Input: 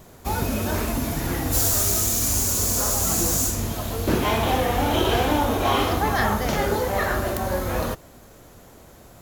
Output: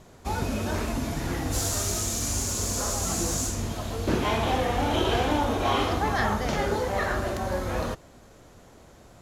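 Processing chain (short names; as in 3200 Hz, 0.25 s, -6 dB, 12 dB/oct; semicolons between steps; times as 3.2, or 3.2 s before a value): LPF 8200 Hz 12 dB/oct; gain -3.5 dB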